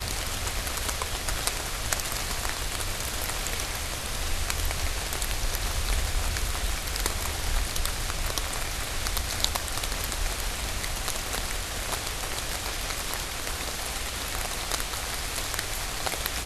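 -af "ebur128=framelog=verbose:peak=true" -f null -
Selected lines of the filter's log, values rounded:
Integrated loudness:
  I:         -29.6 LUFS
  Threshold: -39.6 LUFS
Loudness range:
  LRA:         1.2 LU
  Threshold: -49.6 LUFS
  LRA low:   -30.3 LUFS
  LRA high:  -29.2 LUFS
True peak:
  Peak:       -1.8 dBFS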